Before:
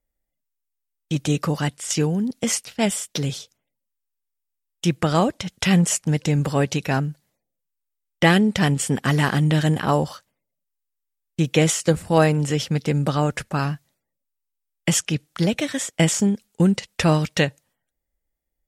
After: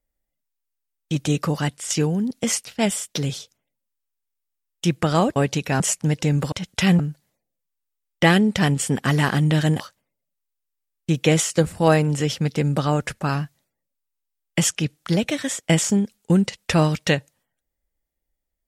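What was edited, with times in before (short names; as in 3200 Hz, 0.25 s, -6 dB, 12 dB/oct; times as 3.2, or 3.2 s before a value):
5.36–5.83 swap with 6.55–6.99
9.8–10.1 cut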